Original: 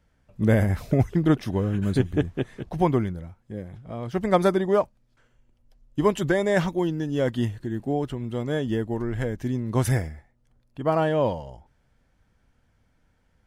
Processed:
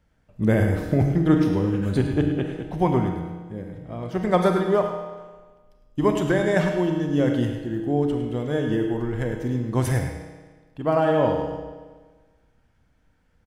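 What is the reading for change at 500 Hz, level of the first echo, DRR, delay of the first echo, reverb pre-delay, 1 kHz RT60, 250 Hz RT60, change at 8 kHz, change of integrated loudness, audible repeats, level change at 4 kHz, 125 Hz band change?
+1.5 dB, -10.5 dB, 3.0 dB, 104 ms, 29 ms, 1.4 s, 1.4 s, -0.5 dB, +2.0 dB, 1, +0.5 dB, +1.5 dB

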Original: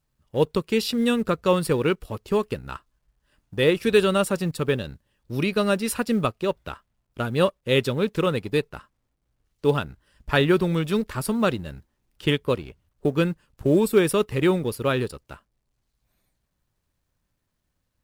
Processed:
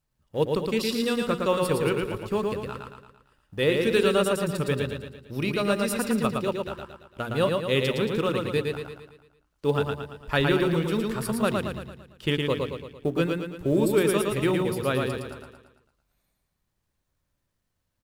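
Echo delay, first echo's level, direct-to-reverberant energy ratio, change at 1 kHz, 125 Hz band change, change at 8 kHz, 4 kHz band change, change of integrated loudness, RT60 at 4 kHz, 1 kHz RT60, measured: 113 ms, -3.5 dB, no reverb, -1.5 dB, -2.5 dB, -1.5 dB, -1.5 dB, -2.5 dB, no reverb, no reverb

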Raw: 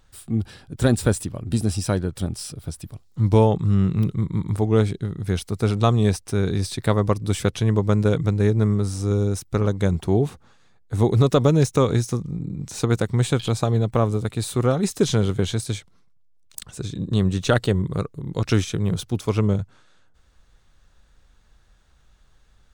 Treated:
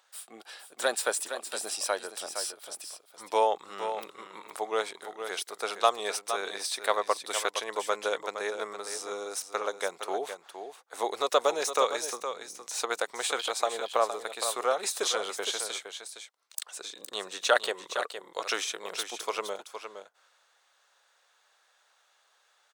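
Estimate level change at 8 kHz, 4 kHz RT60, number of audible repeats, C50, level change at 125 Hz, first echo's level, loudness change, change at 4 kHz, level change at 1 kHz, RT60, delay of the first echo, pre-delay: +0.5 dB, no reverb, 1, no reverb, under -40 dB, -9.0 dB, -9.0 dB, +0.5 dB, +0.5 dB, no reverb, 464 ms, no reverb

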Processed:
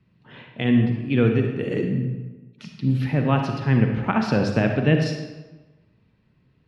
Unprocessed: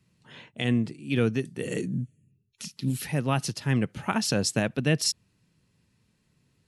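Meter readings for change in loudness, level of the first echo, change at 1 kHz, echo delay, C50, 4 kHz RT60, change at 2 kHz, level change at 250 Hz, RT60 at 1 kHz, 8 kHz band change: +5.5 dB, no echo, +6.0 dB, no echo, 4.5 dB, 0.85 s, +4.0 dB, +7.0 dB, 1.2 s, under -15 dB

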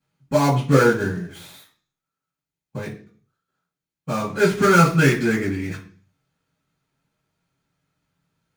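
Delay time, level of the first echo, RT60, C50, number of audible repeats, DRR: no echo, no echo, 0.45 s, 9.0 dB, no echo, -13.5 dB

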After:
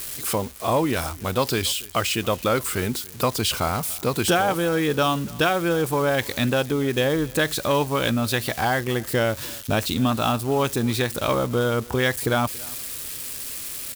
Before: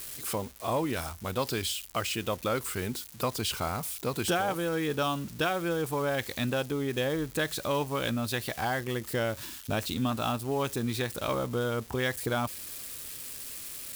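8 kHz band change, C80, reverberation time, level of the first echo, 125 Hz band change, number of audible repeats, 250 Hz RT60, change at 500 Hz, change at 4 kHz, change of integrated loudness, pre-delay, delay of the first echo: +8.0 dB, no reverb, no reverb, -23.0 dB, +8.0 dB, 1, no reverb, +8.0 dB, +8.0 dB, +8.0 dB, no reverb, 283 ms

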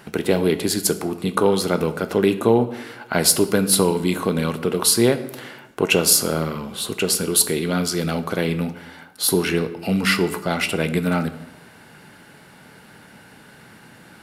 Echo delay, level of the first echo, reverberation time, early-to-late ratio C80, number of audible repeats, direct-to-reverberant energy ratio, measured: no echo, no echo, 1.0 s, 15.5 dB, no echo, 9.5 dB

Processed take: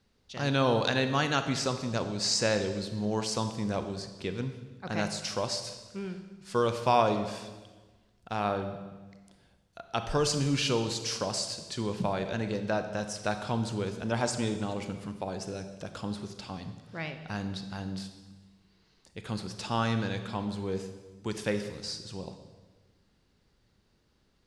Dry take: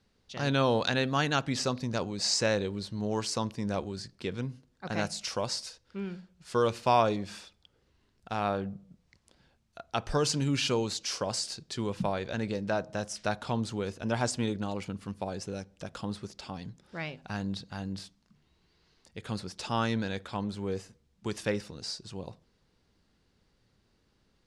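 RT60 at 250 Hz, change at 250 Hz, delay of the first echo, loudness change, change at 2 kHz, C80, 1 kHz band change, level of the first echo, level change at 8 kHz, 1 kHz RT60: 1.6 s, +0.5 dB, no echo, +0.5 dB, +0.5 dB, 10.5 dB, +0.5 dB, no echo, +0.5 dB, 1.2 s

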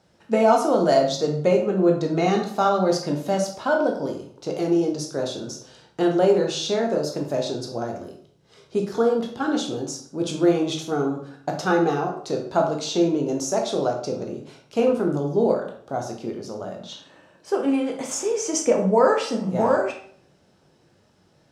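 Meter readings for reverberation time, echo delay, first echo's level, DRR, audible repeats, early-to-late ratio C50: 0.55 s, no echo, no echo, 1.0 dB, no echo, 6.5 dB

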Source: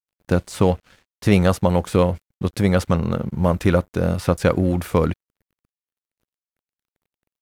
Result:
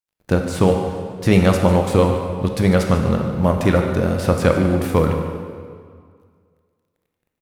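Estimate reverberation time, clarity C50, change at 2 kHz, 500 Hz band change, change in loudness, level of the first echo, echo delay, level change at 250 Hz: 2.0 s, 4.0 dB, +3.0 dB, +3.0 dB, +2.5 dB, -12.5 dB, 147 ms, +2.5 dB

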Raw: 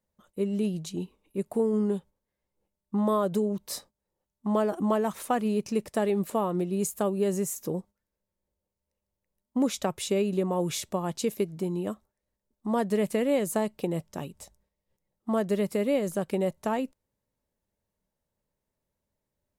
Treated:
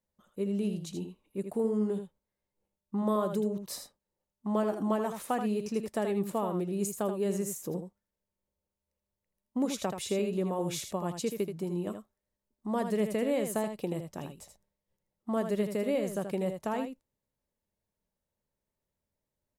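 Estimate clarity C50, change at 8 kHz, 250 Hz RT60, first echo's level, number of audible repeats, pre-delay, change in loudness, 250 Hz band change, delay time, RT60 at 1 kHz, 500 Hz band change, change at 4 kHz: no reverb, -4.0 dB, no reverb, -7.5 dB, 1, no reverb, -3.5 dB, -3.5 dB, 80 ms, no reverb, -4.0 dB, -4.0 dB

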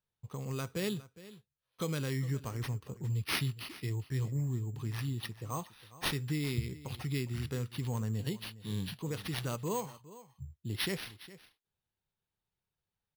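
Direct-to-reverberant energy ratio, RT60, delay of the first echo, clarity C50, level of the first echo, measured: no reverb, no reverb, 410 ms, no reverb, -17.5 dB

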